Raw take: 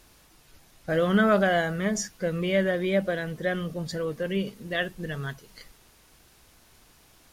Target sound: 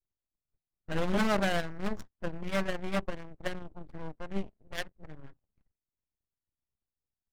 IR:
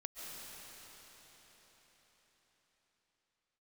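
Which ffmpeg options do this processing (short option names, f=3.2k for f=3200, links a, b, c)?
-af "aeval=exprs='0.316*(cos(1*acos(clip(val(0)/0.316,-1,1)))-cos(1*PI/2))+0.0447*(cos(7*acos(clip(val(0)/0.316,-1,1)))-cos(7*PI/2))+0.0224*(cos(8*acos(clip(val(0)/0.316,-1,1)))-cos(8*PI/2))':c=same,lowshelf=f=180:g=10.5,aeval=exprs='0.237*(abs(mod(val(0)/0.237+3,4)-2)-1)':c=same,adynamicsmooth=sensitivity=7:basefreq=1.3k,volume=-6.5dB"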